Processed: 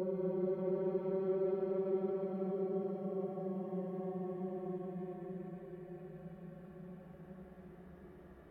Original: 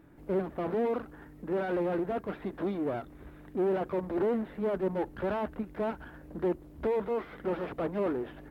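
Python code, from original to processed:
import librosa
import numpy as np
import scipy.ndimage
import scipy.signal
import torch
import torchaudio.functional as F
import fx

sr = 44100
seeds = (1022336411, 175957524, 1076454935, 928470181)

y = fx.hpss_only(x, sr, part='harmonic')
y = fx.room_flutter(y, sr, wall_m=11.7, rt60_s=0.26)
y = fx.paulstretch(y, sr, seeds[0], factor=46.0, window_s=0.1, from_s=0.34)
y = F.gain(torch.from_numpy(y), -8.5).numpy()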